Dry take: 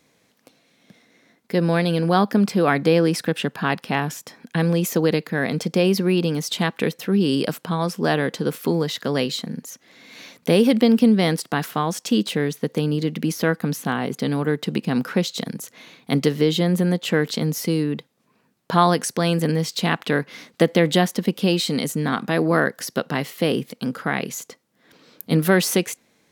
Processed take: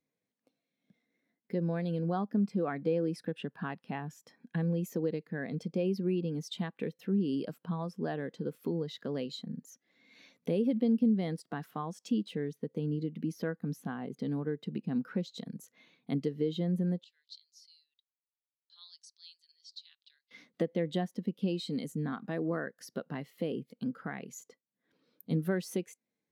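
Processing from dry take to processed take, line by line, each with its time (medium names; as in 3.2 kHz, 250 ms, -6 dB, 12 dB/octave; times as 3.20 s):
17.04–20.31 s: ladder band-pass 4.9 kHz, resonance 50%
whole clip: compression 2:1, threshold -31 dBFS; spectral contrast expander 1.5:1; trim -6 dB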